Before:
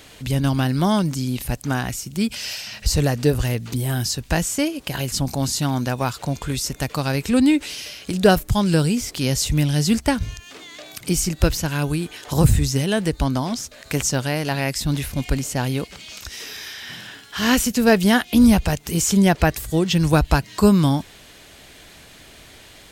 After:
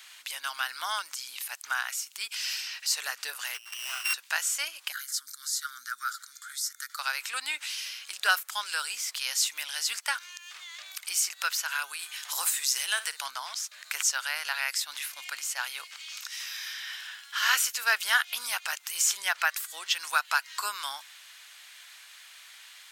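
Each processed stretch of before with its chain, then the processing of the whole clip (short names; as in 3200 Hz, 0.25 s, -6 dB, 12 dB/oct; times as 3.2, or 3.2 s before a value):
3.54–4.14 sample sorter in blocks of 16 samples + Doppler distortion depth 0.12 ms
4.92–6.99 Chebyshev band-stop 250–1300 Hz, order 4 + fixed phaser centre 530 Hz, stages 8
11.99–13.3 high shelf 4600 Hz +6.5 dB + flutter echo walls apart 9.4 m, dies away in 0.22 s
whole clip: HPF 1100 Hz 24 dB/oct; dynamic EQ 1400 Hz, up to +6 dB, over -43 dBFS, Q 4.1; gain -3 dB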